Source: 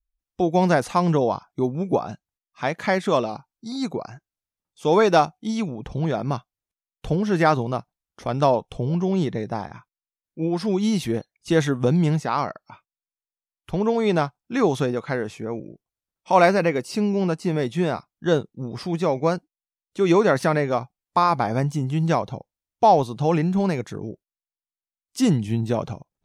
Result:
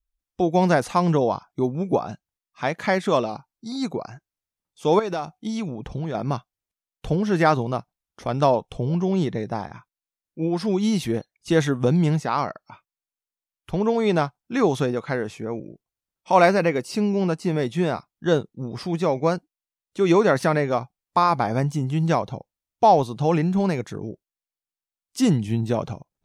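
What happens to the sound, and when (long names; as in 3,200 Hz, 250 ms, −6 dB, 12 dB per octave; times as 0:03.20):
0:04.99–0:06.15: downward compressor 8 to 1, threshold −23 dBFS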